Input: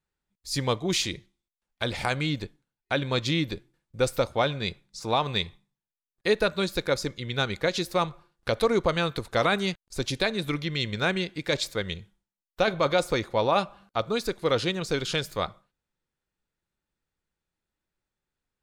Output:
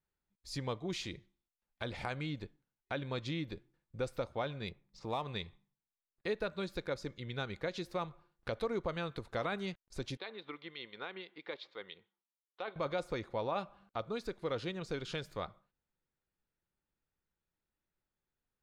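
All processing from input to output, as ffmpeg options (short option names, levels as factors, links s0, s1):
-filter_complex "[0:a]asettb=1/sr,asplit=3[s0][s1][s2];[s0]atrim=end=4.684[s3];[s1]atrim=start=4.68:end=5.25,asetpts=PTS-STARTPTS,afade=t=in:d=0.004:c=qsin,afade=t=out:st=0.566:d=0.004:c=qsin,adynamicsmooth=sensitivity=5.5:basefreq=3100,bandreject=f=1500:w=6.7,acrusher=bits=9:mode=log:mix=0:aa=0.000001[s4];[s2]atrim=start=5.246[s5];[s3][s4]acrossfade=d=0.004:c1=hsin:c2=qsin[s6];[s6][s5]acrossfade=d=0.004:c1=qsin:c2=hsin,asettb=1/sr,asplit=3[s7][s8][s9];[s7]atrim=end=10.174[s10];[s8]atrim=start=10.17:end=12.76,asetpts=PTS-STARTPTS,afade=t=in:d=0.004:c=qsin,afade=t=out:st=2.586:d=0.004:c=qsin,highpass=500,equalizer=f=610:t=q:w=4:g=-8,equalizer=f=1600:t=q:w=4:g=-6,equalizer=f=2500:t=q:w=4:g=-5,lowpass=f=3700:w=0.5412,lowpass=f=3700:w=1.3066,acrossover=split=2500[s11][s12];[s11]aeval=exprs='val(0)*(1-0.5/2+0.5/2*cos(2*PI*6*n/s))':c=same[s13];[s12]aeval=exprs='val(0)*(1-0.5/2-0.5/2*cos(2*PI*6*n/s))':c=same[s14];[s13][s14]amix=inputs=2:normalize=0[s15];[s9]atrim=start=12.756[s16];[s10][s15]acrossfade=d=0.004:c1=hsin:c2=qsin[s17];[s17][s16]acrossfade=d=0.004:c1=qsin:c2=hsin,lowpass=f=2700:p=1,acompressor=threshold=0.00708:ratio=1.5,volume=0.631"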